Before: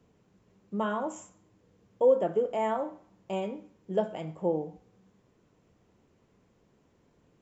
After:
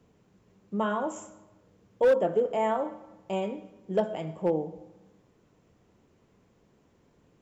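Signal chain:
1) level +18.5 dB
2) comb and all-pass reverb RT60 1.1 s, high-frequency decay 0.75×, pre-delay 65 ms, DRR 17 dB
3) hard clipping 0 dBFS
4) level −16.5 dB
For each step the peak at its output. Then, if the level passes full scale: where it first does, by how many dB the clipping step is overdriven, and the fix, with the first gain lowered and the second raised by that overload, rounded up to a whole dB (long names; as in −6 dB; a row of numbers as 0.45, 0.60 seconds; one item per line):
+5.5, +5.5, 0.0, −16.5 dBFS
step 1, 5.5 dB
step 1 +12.5 dB, step 4 −10.5 dB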